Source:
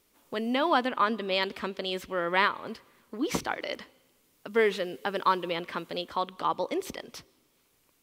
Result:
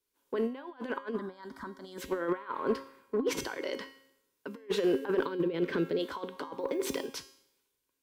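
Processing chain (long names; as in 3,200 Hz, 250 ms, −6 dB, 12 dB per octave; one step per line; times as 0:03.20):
0:05.22–0:05.99: graphic EQ with 15 bands 160 Hz +9 dB, 400 Hz +6 dB, 1,000 Hz −11 dB, 10,000 Hz −6 dB
compressor whose output falls as the input rises −33 dBFS, ratio −0.5
0:06.58–0:07.05: background noise violet −61 dBFS
brickwall limiter −24 dBFS, peak gain reduction 11 dB
tuned comb filter 270 Hz, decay 0.94 s, mix 80%
hollow resonant body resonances 410/980/1,500 Hz, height 11 dB, ringing for 20 ms
dynamic equaliser 290 Hz, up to +4 dB, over −49 dBFS, Q 0.99
0:01.18–0:01.98: phaser with its sweep stopped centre 1,100 Hz, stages 4
asymmetric clip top −32 dBFS
multiband upward and downward expander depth 70%
level +8.5 dB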